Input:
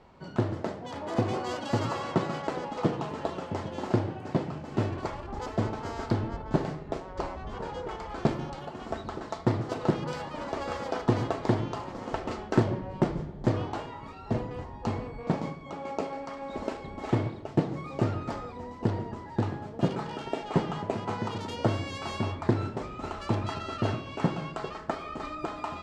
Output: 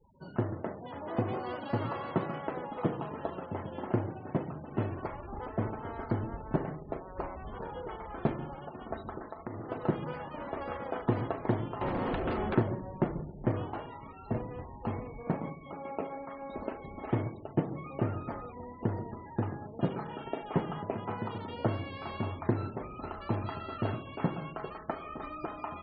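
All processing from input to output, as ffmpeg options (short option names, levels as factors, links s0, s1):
-filter_complex "[0:a]asettb=1/sr,asplit=3[s0][s1][s2];[s0]atrim=end=9.194[s3];[s1]atrim=start=9.19:end=9.7,asetpts=PTS-STARTPTS,afade=t=in:d=0.004:c=qsin,afade=t=out:st=0.506:d=0.004:c=qsin,equalizer=f=130:t=o:w=0.64:g=-8,acompressor=threshold=0.0251:ratio=4:attack=3.2:release=140:knee=1:detection=peak[s4];[s2]atrim=start=9.696[s5];[s3][s4]acrossfade=d=0.004:c1=hsin:c2=qsin[s6];[s6][s5]acrossfade=d=0.004:c1=qsin:c2=hsin,asettb=1/sr,asplit=3[s7][s8][s9];[s7]atrim=end=11.814[s10];[s8]atrim=start=11.81:end=12.55,asetpts=PTS-STARTPTS,afade=t=in:d=0.004:c=qsin,afade=t=out:st=0.736:d=0.004:c=qsin,acrossover=split=600|2800[s11][s12][s13];[s11]acompressor=threshold=0.01:ratio=4[s14];[s12]acompressor=threshold=0.00398:ratio=4[s15];[s13]acompressor=threshold=0.00141:ratio=4[s16];[s14][s15][s16]amix=inputs=3:normalize=0,aeval=exprs='0.0708*sin(PI/2*4.47*val(0)/0.0708)':c=same[s17];[s9]atrim=start=12.546[s18];[s10][s17]acrossfade=d=0.004:c1=hsin:c2=qsin[s19];[s19][s18]acrossfade=d=0.004:c1=qsin:c2=hsin,acrossover=split=3100[s20][s21];[s21]acompressor=threshold=0.00112:ratio=4:attack=1:release=60[s22];[s20][s22]amix=inputs=2:normalize=0,highshelf=f=5200:g=4,afftfilt=real='re*gte(hypot(re,im),0.00631)':imag='im*gte(hypot(re,im),0.00631)':win_size=1024:overlap=0.75,volume=0.631"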